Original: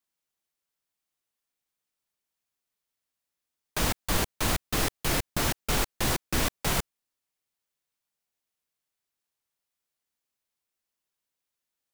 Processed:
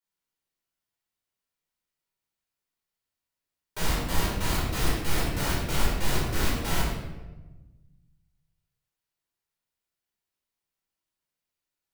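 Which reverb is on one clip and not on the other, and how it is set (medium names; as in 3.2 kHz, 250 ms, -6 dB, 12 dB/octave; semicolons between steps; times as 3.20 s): simulated room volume 620 m³, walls mixed, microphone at 4.6 m; trim -11 dB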